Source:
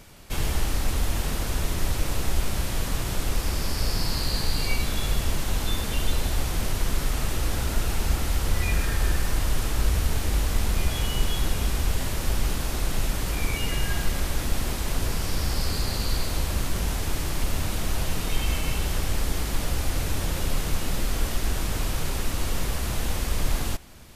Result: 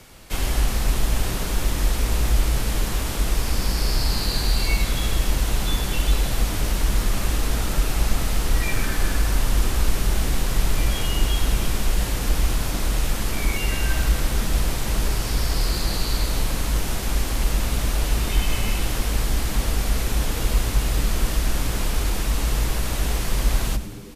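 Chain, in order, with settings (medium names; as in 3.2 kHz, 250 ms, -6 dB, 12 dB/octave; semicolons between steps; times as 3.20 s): frequency-shifting echo 104 ms, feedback 60%, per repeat -96 Hz, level -13.5 dB; frequency shift -60 Hz; trim +3 dB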